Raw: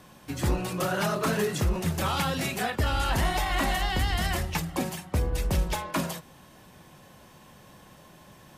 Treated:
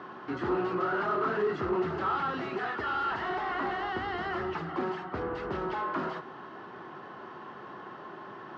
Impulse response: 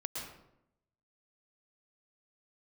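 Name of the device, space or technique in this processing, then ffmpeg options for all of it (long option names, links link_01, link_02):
overdrive pedal into a guitar cabinet: -filter_complex "[0:a]asettb=1/sr,asplit=3[link_01][link_02][link_03];[link_01]atrim=end=2.594[link_04];[link_02]atrim=start=2.59:end=3.3,asetpts=PTS-STARTPTS,afade=type=in:duration=0.004:curve=qsin,afade=type=out:start_time=0.706:duration=0.004:curve=qsin,tiltshelf=frequency=970:gain=-5[link_05];[link_03]atrim=start=3.296[link_06];[link_04][link_05]acrossfade=duration=0.004:curve1=hsin:curve2=qsin[link_07];[link_07][link_06]acrossfade=duration=0.004:curve1=qsin:curve2=hsin,asplit=2[link_08][link_09];[link_09]highpass=frequency=720:poles=1,volume=29dB,asoftclip=type=tanh:threshold=-15dB[link_10];[link_08][link_10]amix=inputs=2:normalize=0,lowpass=frequency=1200:poles=1,volume=-6dB,highpass=110,equalizer=frequency=170:width_type=q:width=4:gain=-4,equalizer=frequency=380:width_type=q:width=4:gain=10,equalizer=frequency=550:width_type=q:width=4:gain=-8,equalizer=frequency=1300:width_type=q:width=4:gain=8,equalizer=frequency=2400:width_type=q:width=4:gain=-9,equalizer=frequency=3600:width_type=q:width=4:gain=-7,lowpass=frequency=3900:width=0.5412,lowpass=frequency=3900:width=1.3066,volume=-8.5dB"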